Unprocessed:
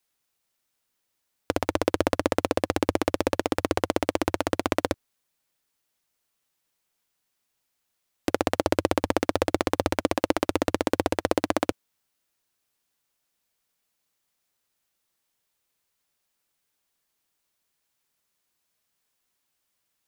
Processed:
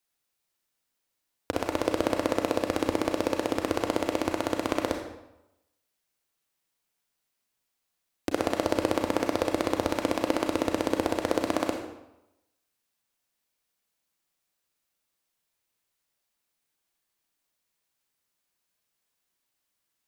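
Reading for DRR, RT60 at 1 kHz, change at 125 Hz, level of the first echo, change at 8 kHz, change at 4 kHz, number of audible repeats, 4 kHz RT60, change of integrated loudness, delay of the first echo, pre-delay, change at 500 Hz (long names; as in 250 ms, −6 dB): 2.5 dB, 0.90 s, −5.0 dB, no echo audible, −3.0 dB, −2.5 dB, no echo audible, 0.70 s, −2.0 dB, no echo audible, 31 ms, −2.0 dB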